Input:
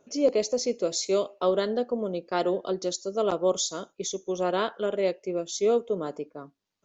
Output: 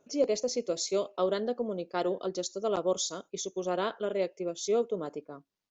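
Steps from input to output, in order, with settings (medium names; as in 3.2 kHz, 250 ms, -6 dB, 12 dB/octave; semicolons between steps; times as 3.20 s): tempo 1.2×; trim -4 dB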